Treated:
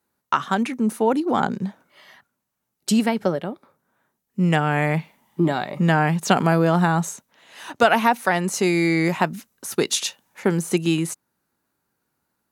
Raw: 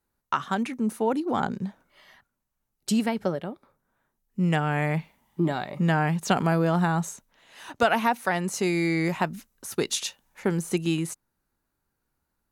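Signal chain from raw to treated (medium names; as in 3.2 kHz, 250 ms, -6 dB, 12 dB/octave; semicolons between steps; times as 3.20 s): high-pass 130 Hz 12 dB/octave; trim +5.5 dB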